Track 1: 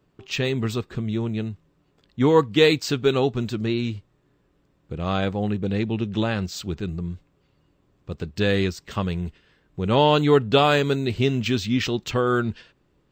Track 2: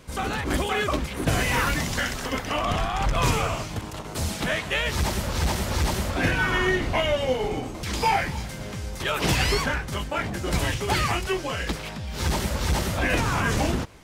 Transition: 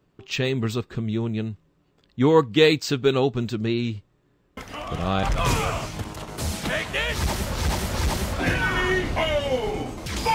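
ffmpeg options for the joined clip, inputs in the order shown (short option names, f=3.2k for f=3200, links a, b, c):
-filter_complex "[1:a]asplit=2[a][b];[0:a]apad=whole_dur=10.34,atrim=end=10.34,atrim=end=5.232[c];[b]atrim=start=2.998:end=8.11[d];[a]atrim=start=2.34:end=3,asetpts=PTS-STARTPTS,volume=-8dB,afade=t=in:d=0.004:c=hsin,afade=t=out:st=0.656:d=0.004:c=hsin,adelay=201537S[e];[c][d]acrossfade=d=0.004:c1=hsin:c2=hsin[f];[f][e]amix=inputs=2:normalize=0"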